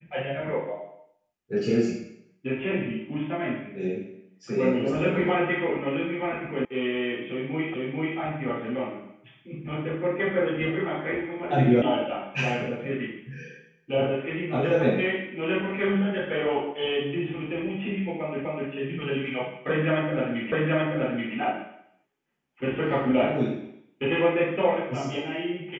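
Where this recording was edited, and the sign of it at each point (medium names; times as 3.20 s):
6.65 s: sound stops dead
7.74 s: repeat of the last 0.44 s
11.82 s: sound stops dead
18.45 s: repeat of the last 0.25 s
20.52 s: repeat of the last 0.83 s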